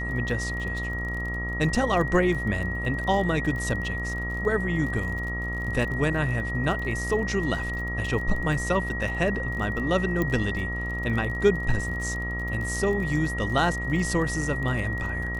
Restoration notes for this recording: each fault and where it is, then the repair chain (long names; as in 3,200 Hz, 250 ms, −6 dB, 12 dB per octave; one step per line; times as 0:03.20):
mains buzz 60 Hz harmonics 23 −32 dBFS
surface crackle 33 per second −33 dBFS
whistle 1,900 Hz −31 dBFS
0:10.22: click −14 dBFS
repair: click removal
hum removal 60 Hz, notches 23
notch filter 1,900 Hz, Q 30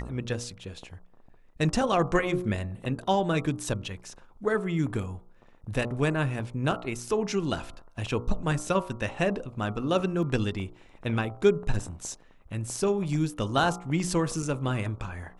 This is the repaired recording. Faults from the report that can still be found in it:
0:10.22: click